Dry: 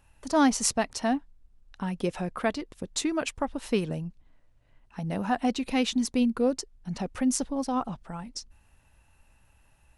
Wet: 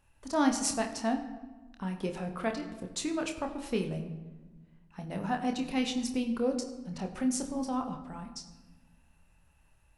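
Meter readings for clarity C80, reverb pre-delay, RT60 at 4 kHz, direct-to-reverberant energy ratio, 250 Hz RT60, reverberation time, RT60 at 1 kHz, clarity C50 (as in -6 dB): 11.0 dB, 27 ms, 0.80 s, 4.0 dB, 1.9 s, 1.2 s, 1.2 s, 9.0 dB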